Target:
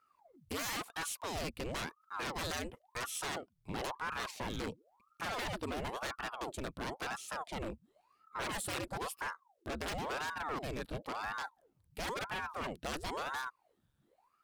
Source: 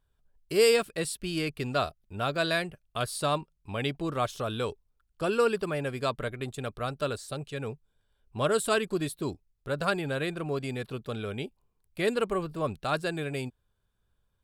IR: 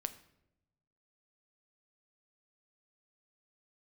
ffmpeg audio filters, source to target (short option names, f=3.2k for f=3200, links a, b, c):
-filter_complex "[0:a]asplit=2[a][b];[b]acompressor=threshold=-40dB:ratio=6,volume=2dB[c];[a][c]amix=inputs=2:normalize=0,aeval=exprs='0.0531*(abs(mod(val(0)/0.0531+3,4)-2)-1)':c=same,asettb=1/sr,asplit=3[d][e][f];[d]atrim=end=3.324[g];[e]atrim=start=3.32:end=5.39,asetpts=PTS-STARTPTS,afade=t=in:d=0.004:c=qsin,afade=t=out:st=2.066:d=0.004:c=qsin,afreqshift=-87[h];[f]atrim=start=5.386[i];[g][h]acrossfade=d=0.004:c1=hsin:c2=qsin[j];[j][i]acrossfade=d=0.004:c1=qsin:c2=hsin,aeval=exprs='val(0)*sin(2*PI*690*n/s+690*0.9/0.97*sin(2*PI*0.97*n/s))':c=same,volume=-4.5dB"